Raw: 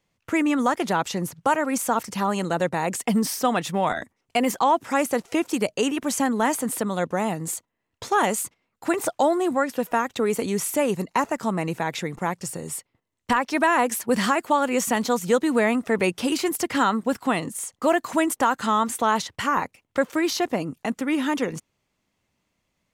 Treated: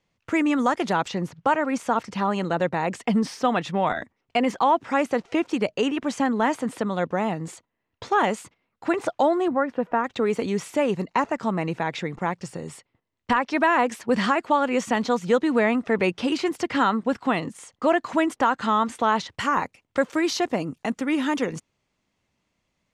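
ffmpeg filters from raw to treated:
-af "asetnsamples=n=441:p=0,asendcmd='1.08 lowpass f 4000;9.48 lowpass f 1700;10.04 lowpass f 4400;19.29 lowpass f 8000',lowpass=6.5k"

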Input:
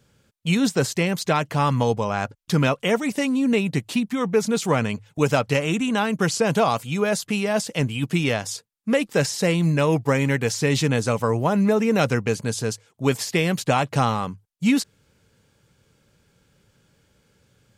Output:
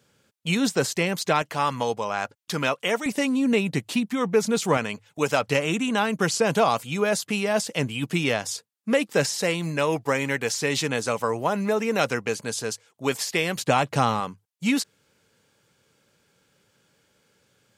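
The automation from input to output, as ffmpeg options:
-af "asetnsamples=n=441:p=0,asendcmd='1.42 highpass f 610;3.06 highpass f 170;4.77 highpass f 470;5.42 highpass f 220;9.42 highpass f 480;13.56 highpass f 160;14.2 highpass f 340',highpass=f=260:p=1"

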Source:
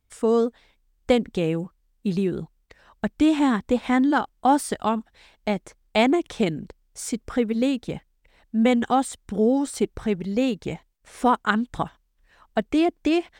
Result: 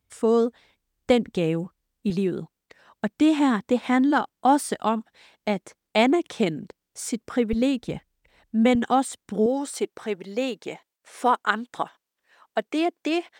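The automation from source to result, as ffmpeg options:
-af "asetnsamples=n=441:p=0,asendcmd='2.1 highpass f 150;7.53 highpass f 47;8.75 highpass f 160;9.46 highpass f 370',highpass=71"

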